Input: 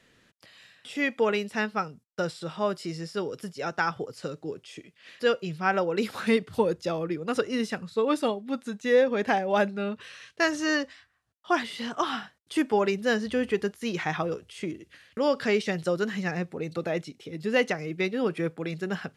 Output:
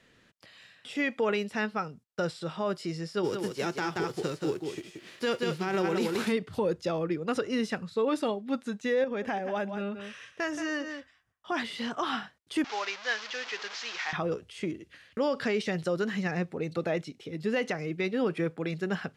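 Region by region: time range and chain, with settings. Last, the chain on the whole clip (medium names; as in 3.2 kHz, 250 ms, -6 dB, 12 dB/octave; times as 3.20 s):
3.23–6.31 s: formants flattened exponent 0.6 + peaking EQ 360 Hz +11.5 dB 0.4 oct + delay 178 ms -6 dB
9.04–11.52 s: band-stop 4.2 kHz, Q 5.1 + delay 175 ms -12.5 dB + compression 2:1, threshold -33 dBFS
12.64–14.13 s: one-bit delta coder 32 kbps, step -28.5 dBFS + high-pass 1.1 kHz
whole clip: treble shelf 8.3 kHz -7 dB; peak limiter -19.5 dBFS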